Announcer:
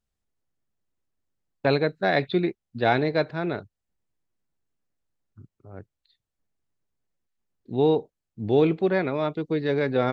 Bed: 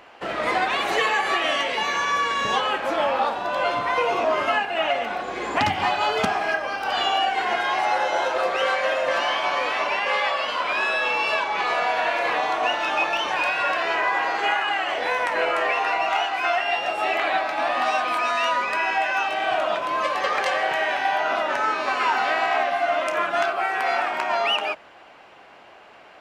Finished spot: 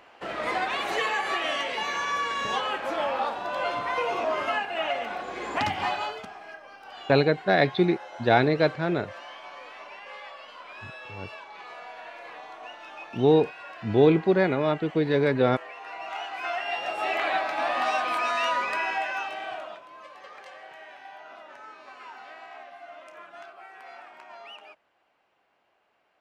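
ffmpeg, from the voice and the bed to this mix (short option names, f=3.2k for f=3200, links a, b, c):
-filter_complex "[0:a]adelay=5450,volume=1.5dB[a];[1:a]volume=10.5dB,afade=t=out:st=5.93:d=0.29:silence=0.199526,afade=t=in:st=15.79:d=1.48:silence=0.158489,afade=t=out:st=18.64:d=1.21:silence=0.112202[b];[a][b]amix=inputs=2:normalize=0"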